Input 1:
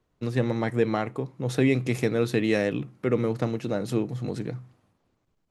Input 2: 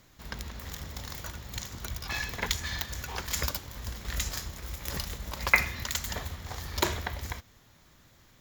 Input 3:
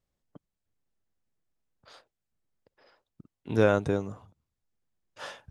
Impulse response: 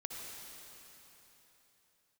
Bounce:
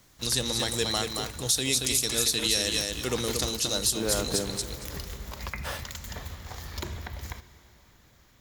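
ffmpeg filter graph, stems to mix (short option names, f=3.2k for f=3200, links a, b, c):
-filter_complex "[0:a]tiltshelf=f=790:g=-5,aexciter=amount=10.1:drive=7.1:freq=3.3k,volume=-10dB,asplit=3[a][b][c];[b]volume=-5.5dB[d];[1:a]acrossover=split=270[e][f];[f]acompressor=threshold=-35dB:ratio=6[g];[e][g]amix=inputs=2:normalize=0,volume=-9dB,asplit=2[h][i];[i]volume=-10.5dB[j];[2:a]highpass=170,alimiter=limit=-20.5dB:level=0:latency=1:release=336,acrusher=bits=6:mix=0:aa=0.000001,adelay=450,volume=-3.5dB,asplit=2[k][l];[l]volume=-10dB[m];[c]apad=whole_len=262835[n];[k][n]sidechaincompress=threshold=-27dB:ratio=8:attack=16:release=293[o];[3:a]atrim=start_sample=2205[p];[j][m]amix=inputs=2:normalize=0[q];[q][p]afir=irnorm=-1:irlink=0[r];[d]aecho=0:1:229|458|687:1|0.17|0.0289[s];[a][h][o][r][s]amix=inputs=5:normalize=0,acontrast=61,alimiter=limit=-13.5dB:level=0:latency=1:release=324"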